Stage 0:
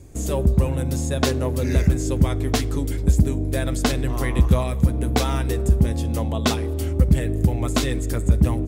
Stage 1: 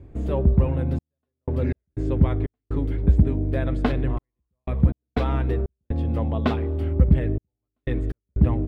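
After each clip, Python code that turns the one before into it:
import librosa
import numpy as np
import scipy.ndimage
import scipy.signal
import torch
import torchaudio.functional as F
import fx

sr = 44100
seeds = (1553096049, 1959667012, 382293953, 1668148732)

y = fx.step_gate(x, sr, bpm=61, pattern='xxxx..x.xx.xx', floor_db=-60.0, edge_ms=4.5)
y = fx.air_absorb(y, sr, metres=480.0)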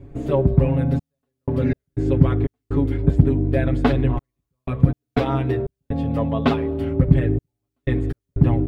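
y = x + 0.86 * np.pad(x, (int(7.2 * sr / 1000.0), 0))[:len(x)]
y = y * 10.0 ** (2.5 / 20.0)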